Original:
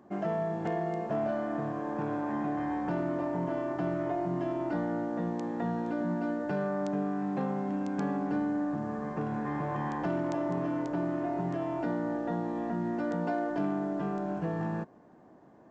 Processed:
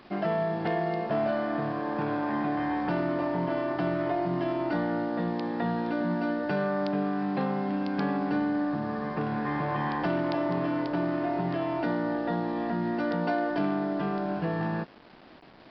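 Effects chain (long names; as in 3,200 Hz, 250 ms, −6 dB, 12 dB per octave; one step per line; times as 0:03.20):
high-shelf EQ 2,100 Hz +12 dB
bit reduction 9 bits
downsampling to 11,025 Hz
level +2.5 dB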